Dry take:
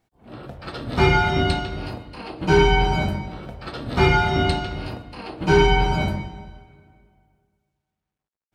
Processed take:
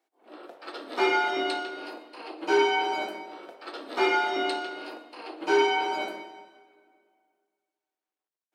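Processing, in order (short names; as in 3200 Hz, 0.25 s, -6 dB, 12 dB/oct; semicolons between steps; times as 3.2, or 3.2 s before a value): elliptic high-pass 310 Hz, stop band 80 dB; reverb RT60 1.0 s, pre-delay 48 ms, DRR 15 dB; gain -4.5 dB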